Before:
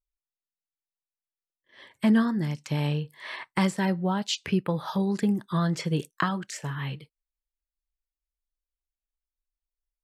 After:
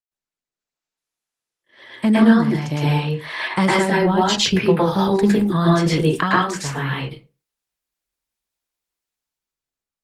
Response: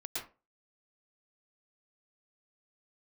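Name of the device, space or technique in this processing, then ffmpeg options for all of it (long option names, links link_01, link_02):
far-field microphone of a smart speaker: -filter_complex "[0:a]asettb=1/sr,asplit=3[link_01][link_02][link_03];[link_01]atrim=end=2.064[link_04];[link_02]atrim=start=2.06:end=3.4,asetpts=PTS-STARTPTS,afade=type=in:duration=0.004:curve=qsin,afade=type=out:start_time=1.336:duration=0.004:curve=qsin,deesser=0.8[link_05];[link_03]atrim=start=3.396[link_06];[link_04][link_05]acrossfade=duration=0.004:curve1=hsin:curve2=qsin[link_07];[link_07][link_06]acrossfade=duration=0.004:curve1=qsin:curve2=hsin[link_08];[1:a]atrim=start_sample=2205[link_09];[link_08][link_09]afir=irnorm=-1:irlink=0,highpass=100,dynaudnorm=framelen=150:gausssize=11:maxgain=13dB" -ar 48000 -c:a libopus -b:a 20k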